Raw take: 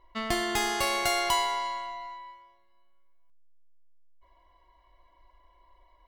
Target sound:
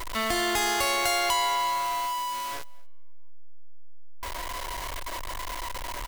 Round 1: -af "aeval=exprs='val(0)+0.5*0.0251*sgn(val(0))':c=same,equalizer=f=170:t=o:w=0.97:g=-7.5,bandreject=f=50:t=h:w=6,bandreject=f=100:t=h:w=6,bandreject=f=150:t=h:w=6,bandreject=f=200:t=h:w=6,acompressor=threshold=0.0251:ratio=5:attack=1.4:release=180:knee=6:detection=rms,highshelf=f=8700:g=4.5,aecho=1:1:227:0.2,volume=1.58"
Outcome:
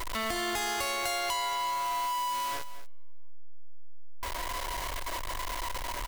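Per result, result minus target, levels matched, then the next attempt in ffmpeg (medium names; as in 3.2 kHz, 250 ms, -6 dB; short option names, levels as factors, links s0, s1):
echo-to-direct +11.5 dB; compression: peak gain reduction +6.5 dB
-af "aeval=exprs='val(0)+0.5*0.0251*sgn(val(0))':c=same,equalizer=f=170:t=o:w=0.97:g=-7.5,bandreject=f=50:t=h:w=6,bandreject=f=100:t=h:w=6,bandreject=f=150:t=h:w=6,bandreject=f=200:t=h:w=6,acompressor=threshold=0.0251:ratio=5:attack=1.4:release=180:knee=6:detection=rms,highshelf=f=8700:g=4.5,aecho=1:1:227:0.0531,volume=1.58"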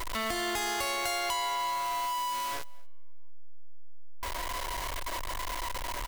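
compression: peak gain reduction +6.5 dB
-af "aeval=exprs='val(0)+0.5*0.0251*sgn(val(0))':c=same,equalizer=f=170:t=o:w=0.97:g=-7.5,bandreject=f=50:t=h:w=6,bandreject=f=100:t=h:w=6,bandreject=f=150:t=h:w=6,bandreject=f=200:t=h:w=6,acompressor=threshold=0.0631:ratio=5:attack=1.4:release=180:knee=6:detection=rms,highshelf=f=8700:g=4.5,aecho=1:1:227:0.0531,volume=1.58"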